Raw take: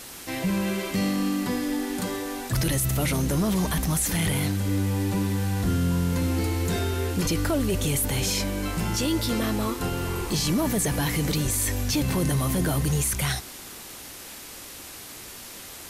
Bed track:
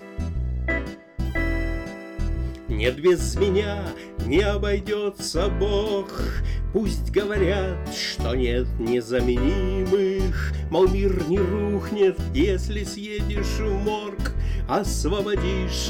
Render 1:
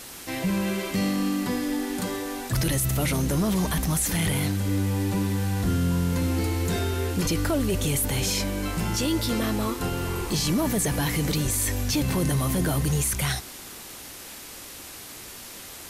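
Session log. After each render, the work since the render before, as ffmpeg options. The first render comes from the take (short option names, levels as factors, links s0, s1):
-af anull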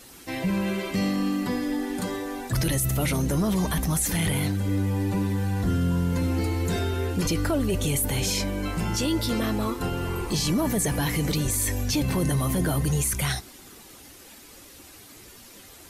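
-af "afftdn=nr=9:nf=-41"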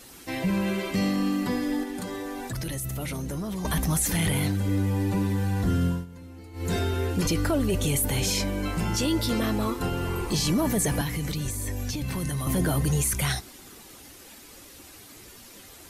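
-filter_complex "[0:a]asettb=1/sr,asplit=3[s0][s1][s2];[s0]atrim=end=1.834[s3];[s1]atrim=start=1.83:end=3.65,asetpts=PTS-STARTPTS,afade=t=in:d=0.004:c=qsin,afade=t=out:st=1.816:d=0.004:c=qsin,acompressor=threshold=0.0316:ratio=4:attack=3.2:release=140:knee=1:detection=peak[s4];[s2]atrim=start=3.646[s5];[s3][s4]acrossfade=d=0.004:c1=hsin:c2=qsin[s6];[s6][s5]acrossfade=d=0.004:c1=qsin:c2=hsin,asettb=1/sr,asplit=3[s7][s8][s9];[s7]atrim=end=11.014[s10];[s8]atrim=start=11.01:end=12.47,asetpts=PTS-STARTPTS,afade=t=in:d=0.004:c=qsin,afade=t=out:st=1.456:d=0.004:c=qsin,acrossover=split=190|1100[s11][s12][s13];[s11]acompressor=threshold=0.0355:ratio=4[s14];[s12]acompressor=threshold=0.0126:ratio=4[s15];[s13]acompressor=threshold=0.0178:ratio=4[s16];[s14][s15][s16]amix=inputs=3:normalize=0[s17];[s9]atrim=start=12.466[s18];[s10][s17]acrossfade=d=0.004:c1=hsin:c2=qsin[s19];[s19][s18]acrossfade=d=0.004:c1=qsin:c2=hsin,asplit=3[s20][s21][s22];[s20]atrim=end=6.06,asetpts=PTS-STARTPTS,afade=t=out:st=5.86:d=0.2:silence=0.112202[s23];[s21]atrim=start=6.06:end=6.53,asetpts=PTS-STARTPTS,volume=0.112[s24];[s22]atrim=start=6.53,asetpts=PTS-STARTPTS,afade=t=in:d=0.2:silence=0.112202[s25];[s23][s24][s25]concat=n=3:v=0:a=1"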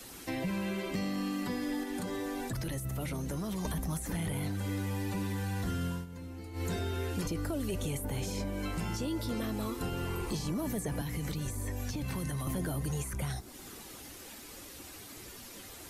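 -filter_complex "[0:a]acrossover=split=190|790|5500[s0][s1][s2][s3];[s2]alimiter=level_in=1.26:limit=0.0631:level=0:latency=1:release=388,volume=0.794[s4];[s0][s1][s4][s3]amix=inputs=4:normalize=0,acrossover=split=620|1600[s5][s6][s7];[s5]acompressor=threshold=0.02:ratio=4[s8];[s6]acompressor=threshold=0.00447:ratio=4[s9];[s7]acompressor=threshold=0.00562:ratio=4[s10];[s8][s9][s10]amix=inputs=3:normalize=0"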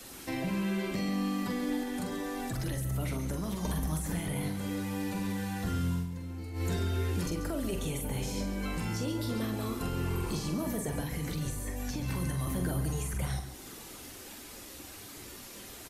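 -filter_complex "[0:a]asplit=2[s0][s1];[s1]adelay=45,volume=0.501[s2];[s0][s2]amix=inputs=2:normalize=0,asplit=2[s3][s4];[s4]aecho=0:1:138:0.282[s5];[s3][s5]amix=inputs=2:normalize=0"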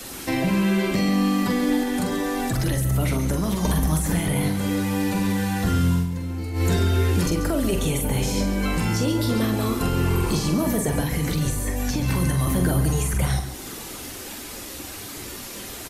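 -af "volume=3.55"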